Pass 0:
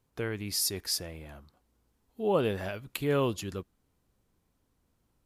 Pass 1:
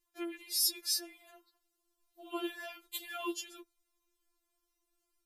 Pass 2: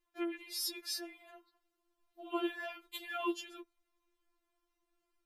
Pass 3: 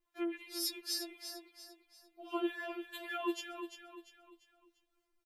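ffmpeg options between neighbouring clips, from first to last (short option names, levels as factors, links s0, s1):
-af "highshelf=f=2200:g=9.5,afftfilt=real='re*4*eq(mod(b,16),0)':imag='im*4*eq(mod(b,16),0)':win_size=2048:overlap=0.75,volume=0.447"
-af "bass=f=250:g=-2,treble=f=4000:g=-13,volume=1.41"
-filter_complex "[0:a]acrossover=split=810[s0][s1];[s0]aeval=exprs='val(0)*(1-0.5/2+0.5/2*cos(2*PI*3.7*n/s))':c=same[s2];[s1]aeval=exprs='val(0)*(1-0.5/2-0.5/2*cos(2*PI*3.7*n/s))':c=same[s3];[s2][s3]amix=inputs=2:normalize=0,asplit=2[s4][s5];[s5]aecho=0:1:345|690|1035|1380:0.355|0.138|0.054|0.021[s6];[s4][s6]amix=inputs=2:normalize=0,volume=1.19"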